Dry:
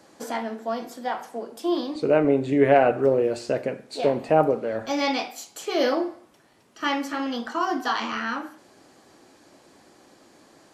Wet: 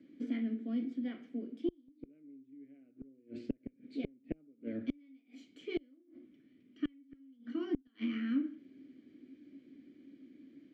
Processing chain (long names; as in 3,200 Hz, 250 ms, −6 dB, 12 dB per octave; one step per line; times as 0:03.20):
formant filter i
gate with flip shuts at −30 dBFS, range −36 dB
spectral tilt −3.5 dB per octave
level +1.5 dB